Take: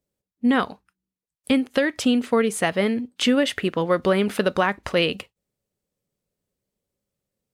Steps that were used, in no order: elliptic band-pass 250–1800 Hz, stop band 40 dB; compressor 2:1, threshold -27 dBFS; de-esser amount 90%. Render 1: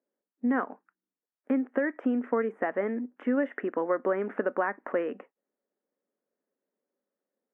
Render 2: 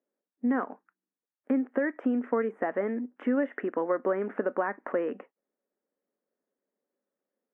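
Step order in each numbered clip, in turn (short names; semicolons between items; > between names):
compressor > de-esser > elliptic band-pass; de-esser > compressor > elliptic band-pass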